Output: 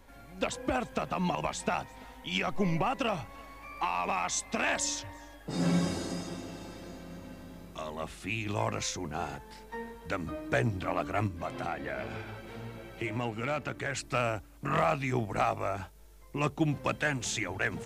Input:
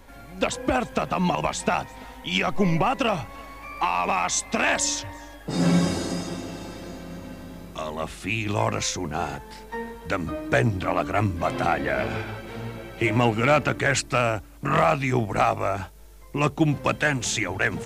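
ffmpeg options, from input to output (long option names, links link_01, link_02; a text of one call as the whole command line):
ffmpeg -i in.wav -filter_complex "[0:a]asplit=3[link_01][link_02][link_03];[link_01]afade=type=out:start_time=11.27:duration=0.02[link_04];[link_02]acompressor=threshold=-32dB:ratio=1.5,afade=type=in:start_time=11.27:duration=0.02,afade=type=out:start_time=14:duration=0.02[link_05];[link_03]afade=type=in:start_time=14:duration=0.02[link_06];[link_04][link_05][link_06]amix=inputs=3:normalize=0,volume=-7.5dB" out.wav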